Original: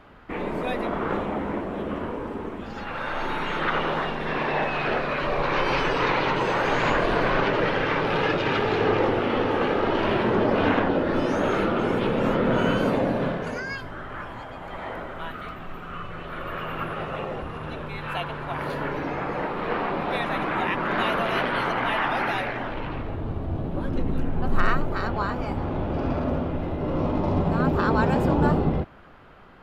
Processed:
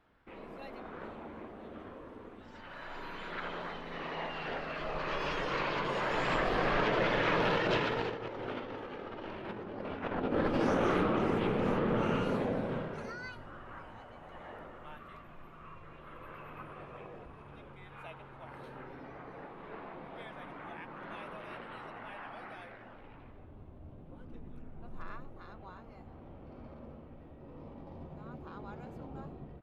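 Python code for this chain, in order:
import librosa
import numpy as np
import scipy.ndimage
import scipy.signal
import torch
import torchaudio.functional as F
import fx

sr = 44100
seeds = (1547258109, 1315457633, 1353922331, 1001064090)

y = fx.doppler_pass(x, sr, speed_mps=28, closest_m=21.0, pass_at_s=9.0)
y = fx.over_compress(y, sr, threshold_db=-31.0, ratio=-0.5)
y = fx.doppler_dist(y, sr, depth_ms=0.16)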